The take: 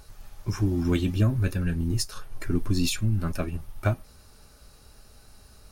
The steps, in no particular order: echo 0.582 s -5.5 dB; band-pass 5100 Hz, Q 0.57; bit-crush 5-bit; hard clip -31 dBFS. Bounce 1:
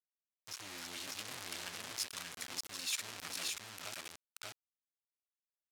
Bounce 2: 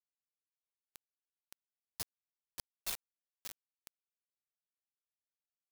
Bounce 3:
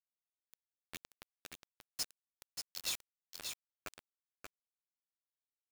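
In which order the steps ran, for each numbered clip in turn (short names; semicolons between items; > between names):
bit-crush > echo > hard clip > band-pass; echo > hard clip > band-pass > bit-crush; band-pass > bit-crush > hard clip > echo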